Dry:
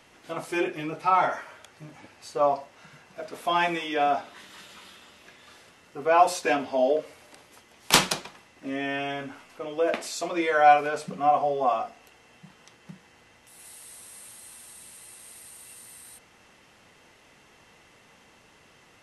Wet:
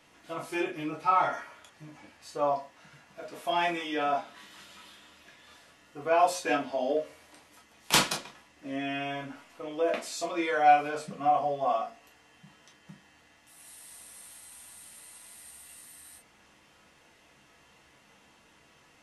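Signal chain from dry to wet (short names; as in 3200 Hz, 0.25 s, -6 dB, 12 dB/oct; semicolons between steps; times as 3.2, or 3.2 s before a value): reverb, pre-delay 3 ms, DRR 0.5 dB; 13.71–15.82 lo-fi delay 85 ms, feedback 55%, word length 12-bit, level -9.5 dB; gain -6.5 dB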